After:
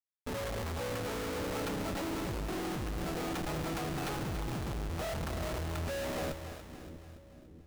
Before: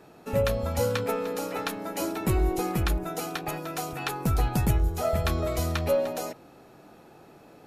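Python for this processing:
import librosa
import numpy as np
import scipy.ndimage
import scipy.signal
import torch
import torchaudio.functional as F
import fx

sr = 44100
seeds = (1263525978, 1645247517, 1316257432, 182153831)

y = fx.env_lowpass_down(x, sr, base_hz=1600.0, full_db=-21.5)
y = fx.schmitt(y, sr, flips_db=-35.0)
y = fx.echo_split(y, sr, split_hz=390.0, low_ms=643, high_ms=285, feedback_pct=52, wet_db=-9.0)
y = y * librosa.db_to_amplitude(-8.5)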